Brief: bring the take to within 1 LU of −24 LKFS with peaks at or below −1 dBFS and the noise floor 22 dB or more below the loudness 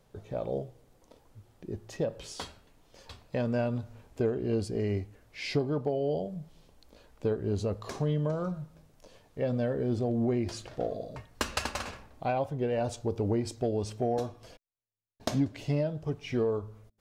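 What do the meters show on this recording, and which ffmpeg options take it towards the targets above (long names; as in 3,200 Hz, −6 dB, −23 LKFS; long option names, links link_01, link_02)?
integrated loudness −32.5 LKFS; sample peak −17.5 dBFS; target loudness −24.0 LKFS
→ -af "volume=8.5dB"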